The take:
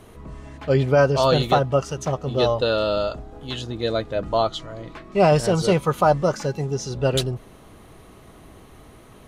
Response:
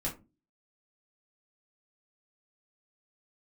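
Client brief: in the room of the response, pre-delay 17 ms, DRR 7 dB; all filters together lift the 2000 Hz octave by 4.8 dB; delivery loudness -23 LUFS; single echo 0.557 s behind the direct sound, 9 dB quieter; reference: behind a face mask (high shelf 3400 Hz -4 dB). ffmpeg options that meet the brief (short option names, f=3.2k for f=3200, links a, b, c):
-filter_complex "[0:a]equalizer=f=2k:t=o:g=8.5,aecho=1:1:557:0.355,asplit=2[a][b];[1:a]atrim=start_sample=2205,adelay=17[c];[b][c]afir=irnorm=-1:irlink=0,volume=-10dB[d];[a][d]amix=inputs=2:normalize=0,highshelf=f=3.4k:g=-4,volume=-3.5dB"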